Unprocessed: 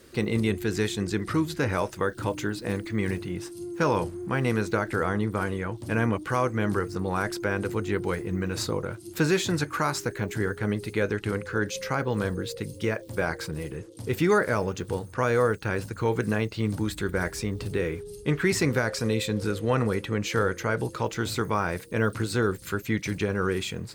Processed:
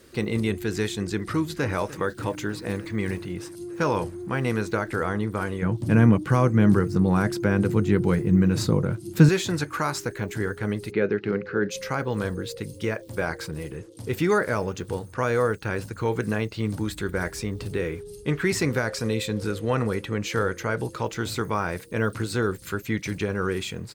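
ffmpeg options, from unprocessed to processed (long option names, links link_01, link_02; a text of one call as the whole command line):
ffmpeg -i in.wav -filter_complex "[0:a]asplit=2[link_01][link_02];[link_02]afade=type=in:start_time=1.19:duration=0.01,afade=type=out:start_time=1.75:duration=0.01,aecho=0:1:300|600|900|1200|1500|1800|2100|2400|2700|3000|3300|3600:0.141254|0.113003|0.0904024|0.0723219|0.0578575|0.046286|0.0370288|0.0296231|0.0236984|0.0189588|0.015167|0.0121336[link_03];[link_01][link_03]amix=inputs=2:normalize=0,asettb=1/sr,asplit=3[link_04][link_05][link_06];[link_04]atrim=end=5.624[link_07];[link_05]atrim=start=5.62:end=9.29,asetpts=PTS-STARTPTS,afade=type=in:duration=0.004:curve=qsin,afade=type=out:start_time=3.666:duration=0.004:curve=qsin,equalizer=frequency=160:width_type=o:width=1.7:gain=13.5[link_08];[link_06]atrim=start=9.286[link_09];[link_07][link_08]acrossfade=duration=0.004:curve1=hsin:curve2=qsin[link_10];[link_10][link_09]acrossfade=duration=0.004:curve1=qsin:curve2=hsin,asplit=3[link_11][link_12][link_13];[link_11]afade=type=out:start_time=10.9:duration=0.02[link_14];[link_12]highpass=130,equalizer=frequency=190:width_type=q:width=4:gain=7,equalizer=frequency=390:width_type=q:width=4:gain=7,equalizer=frequency=1000:width_type=q:width=4:gain=-5,equalizer=frequency=3400:width_type=q:width=4:gain=-7,lowpass=frequency=4200:width=0.5412,lowpass=frequency=4200:width=1.3066,afade=type=in:start_time=10.9:duration=0.02,afade=type=out:start_time=11.7:duration=0.02[link_15];[link_13]afade=type=in:start_time=11.7:duration=0.02[link_16];[link_14][link_15][link_16]amix=inputs=3:normalize=0" out.wav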